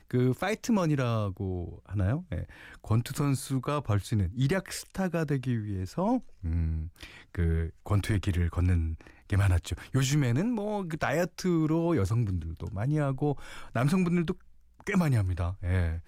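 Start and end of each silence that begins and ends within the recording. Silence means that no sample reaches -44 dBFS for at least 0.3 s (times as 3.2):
14.35–14.8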